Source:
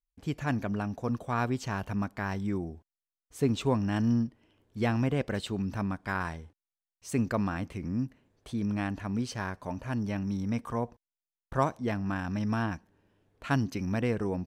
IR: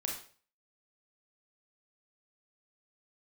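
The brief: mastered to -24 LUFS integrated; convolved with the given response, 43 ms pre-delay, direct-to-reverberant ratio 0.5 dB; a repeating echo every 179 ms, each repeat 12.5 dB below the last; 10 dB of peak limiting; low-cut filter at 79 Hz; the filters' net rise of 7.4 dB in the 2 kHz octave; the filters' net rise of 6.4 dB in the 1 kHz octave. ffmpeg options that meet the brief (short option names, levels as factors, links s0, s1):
-filter_complex "[0:a]highpass=79,equalizer=f=1000:t=o:g=6,equalizer=f=2000:t=o:g=7.5,alimiter=limit=0.141:level=0:latency=1,aecho=1:1:179|358|537:0.237|0.0569|0.0137,asplit=2[s0][s1];[1:a]atrim=start_sample=2205,adelay=43[s2];[s1][s2]afir=irnorm=-1:irlink=0,volume=0.75[s3];[s0][s3]amix=inputs=2:normalize=0,volume=1.78"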